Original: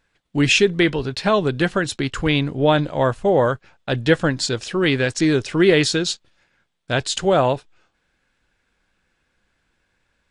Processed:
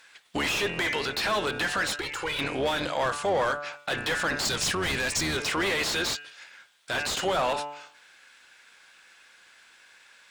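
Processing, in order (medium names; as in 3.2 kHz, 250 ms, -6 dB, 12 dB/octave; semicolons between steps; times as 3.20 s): octave divider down 2 oct, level +3 dB; pre-emphasis filter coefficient 0.97; de-hum 145.6 Hz, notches 20; overdrive pedal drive 36 dB, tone 1.3 kHz, clips at -9 dBFS; 4.45–5.37 s: tone controls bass +9 dB, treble +7 dB; compression 6:1, threshold -27 dBFS, peak gain reduction 9.5 dB; peak limiter -24.5 dBFS, peak gain reduction 7 dB; 1.96–2.39 s: touch-sensitive flanger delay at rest 3.3 ms, full sweep at -14.5 dBFS; Chebyshev shaper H 3 -22 dB, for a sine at -24.5 dBFS; trim +5 dB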